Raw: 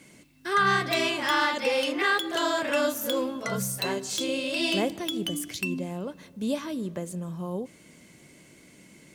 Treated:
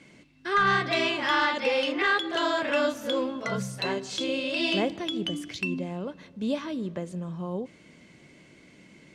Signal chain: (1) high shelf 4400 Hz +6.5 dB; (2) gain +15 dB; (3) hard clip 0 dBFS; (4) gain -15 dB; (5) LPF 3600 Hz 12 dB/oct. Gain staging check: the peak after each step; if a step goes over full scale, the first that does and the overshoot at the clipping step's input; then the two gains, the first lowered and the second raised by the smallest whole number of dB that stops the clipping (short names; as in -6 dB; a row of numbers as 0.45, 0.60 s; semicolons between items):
-9.0, +6.0, 0.0, -15.0, -14.5 dBFS; step 2, 6.0 dB; step 2 +9 dB, step 4 -9 dB